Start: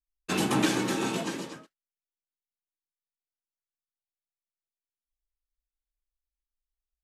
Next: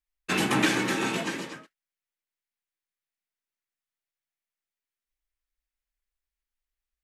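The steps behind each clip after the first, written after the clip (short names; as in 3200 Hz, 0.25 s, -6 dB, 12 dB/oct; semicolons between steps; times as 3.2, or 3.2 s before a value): bell 2000 Hz +8 dB 1.1 oct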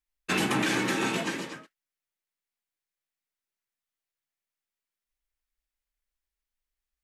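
limiter -16.5 dBFS, peak gain reduction 7.5 dB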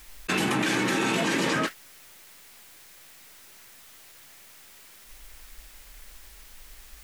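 fast leveller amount 100%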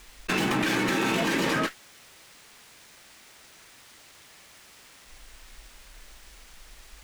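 running maximum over 3 samples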